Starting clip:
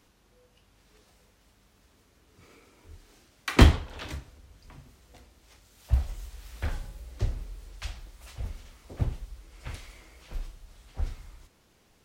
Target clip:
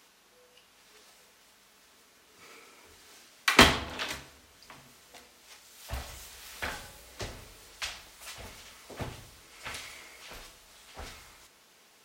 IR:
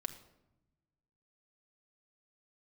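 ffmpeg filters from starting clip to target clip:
-filter_complex "[0:a]highpass=f=910:p=1,asplit=2[s0][s1];[1:a]atrim=start_sample=2205,afade=t=out:st=0.44:d=0.01,atrim=end_sample=19845[s2];[s1][s2]afir=irnorm=-1:irlink=0,volume=1.26[s3];[s0][s3]amix=inputs=2:normalize=0,volume=1.19"

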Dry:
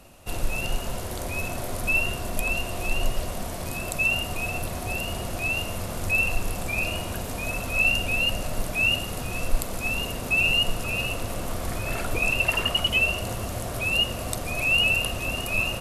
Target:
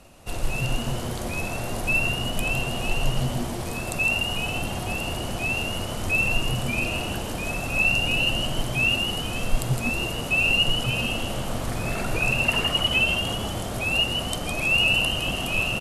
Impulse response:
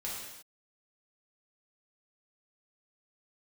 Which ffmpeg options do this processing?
-filter_complex "[0:a]lowpass=11000,asplit=7[s0][s1][s2][s3][s4][s5][s6];[s1]adelay=160,afreqshift=110,volume=0.501[s7];[s2]adelay=320,afreqshift=220,volume=0.234[s8];[s3]adelay=480,afreqshift=330,volume=0.111[s9];[s4]adelay=640,afreqshift=440,volume=0.0519[s10];[s5]adelay=800,afreqshift=550,volume=0.0245[s11];[s6]adelay=960,afreqshift=660,volume=0.0115[s12];[s0][s7][s8][s9][s10][s11][s12]amix=inputs=7:normalize=0"

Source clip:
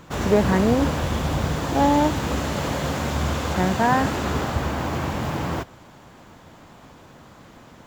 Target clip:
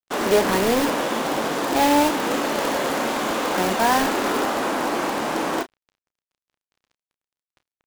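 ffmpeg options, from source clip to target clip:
-filter_complex "[0:a]highpass=f=260:w=0.5412,highpass=f=260:w=1.3066,aemphasis=mode=reproduction:type=cd,asplit=2[s0][s1];[s1]aeval=exprs='(mod(8.91*val(0)+1,2)-1)/8.91':c=same,volume=0.708[s2];[s0][s2]amix=inputs=2:normalize=0,acrusher=bits=4:mix=0:aa=0.5,asplit=2[s3][s4];[s4]adelay=31,volume=0.282[s5];[s3][s5]amix=inputs=2:normalize=0"

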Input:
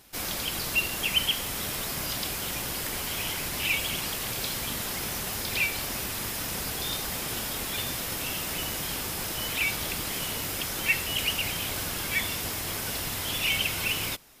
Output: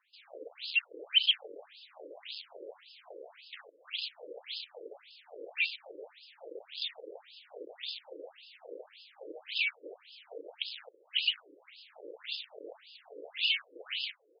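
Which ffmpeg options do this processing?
-filter_complex "[0:a]asettb=1/sr,asplit=3[s0][s1][s2];[s0]atrim=end=1.444[s3];[s1]atrim=start=1.44:end=3.61,asetpts=PTS-STARTPTS,afade=t=in:d=0.004:c=qsin,afade=t=out:st=2.166:d=0.004:c=qsin,equalizer=f=960:w=1.7:g=7.5[s4];[s2]atrim=start=3.606[s5];[s3][s4]acrossfade=d=0.004:c1=hsin:c2=qsin[s6];[s6][s5]acrossfade=d=0.004:c1=qsin:c2=hsin,asplit=2[s7][s8];[s8]adelay=320,highpass=300,lowpass=3400,asoftclip=type=hard:threshold=0.0794,volume=0.224[s9];[s7][s9]amix=inputs=2:normalize=0,acontrast=30,equalizer=f=470:w=3.1:g=10,acrossover=split=120|3000[s10][s11][s12];[s11]acompressor=threshold=0.0112:ratio=5[s13];[s10][s13][s12]amix=inputs=3:normalize=0,afwtdn=0.0251,afftfilt=real='re*between(b*sr/1024,400*pow(3700/400,0.5+0.5*sin(2*PI*1.8*pts/sr))/1.41,400*pow(3700/400,0.5+0.5*sin(2*PI*1.8*pts/sr))*1.41)':imag='im*between(b*sr/1024,400*pow(3700/400,0.5+0.5*sin(2*PI*1.8*pts/sr))/1.41,400*pow(3700/400,0.5+0.5*sin(2*PI*1.8*pts/sr))*1.41)':win_size=1024:overlap=0.75"

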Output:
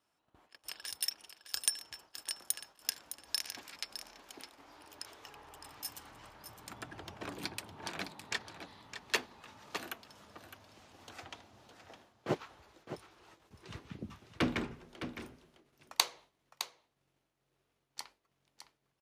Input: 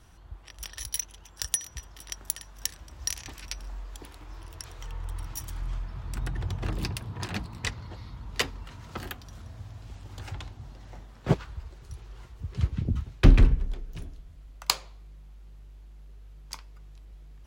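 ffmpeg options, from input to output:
-af "agate=range=0.2:threshold=0.00501:ratio=16:detection=peak,highpass=310,aecho=1:1:561:0.299,asetrate=40517,aresample=44100,volume=0.631"

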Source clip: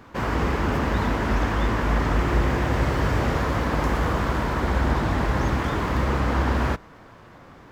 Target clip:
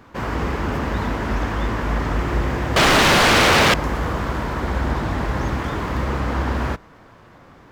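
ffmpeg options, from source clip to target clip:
-filter_complex "[0:a]asettb=1/sr,asplit=3[s0][s1][s2];[s0]atrim=end=2.764[s3];[s1]atrim=start=2.76:end=3.74,asetpts=PTS-STARTPTS,afade=t=in:d=0.004:c=qsin,afade=t=out:st=0.976:d=0.004:c=qsin,aeval=exprs='0.282*sin(PI/2*7.08*val(0)/0.282)':c=same[s4];[s2]atrim=start=3.736[s5];[s3][s4]acrossfade=d=0.004:c1=hsin:c2=qsin[s6];[s6][s5]acrossfade=d=0.004:c1=qsin:c2=hsin"

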